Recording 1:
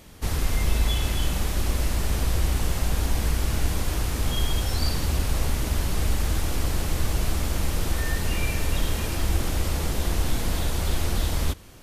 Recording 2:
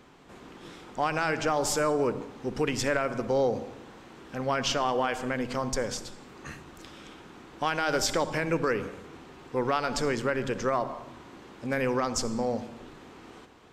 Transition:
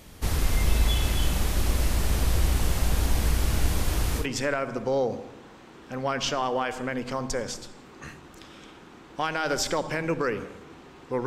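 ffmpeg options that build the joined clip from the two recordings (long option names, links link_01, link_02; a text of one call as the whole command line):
ffmpeg -i cue0.wav -i cue1.wav -filter_complex "[0:a]apad=whole_dur=11.26,atrim=end=11.26,atrim=end=4.27,asetpts=PTS-STARTPTS[link_01];[1:a]atrim=start=2.6:end=9.69,asetpts=PTS-STARTPTS[link_02];[link_01][link_02]acrossfade=duration=0.1:curve1=tri:curve2=tri" out.wav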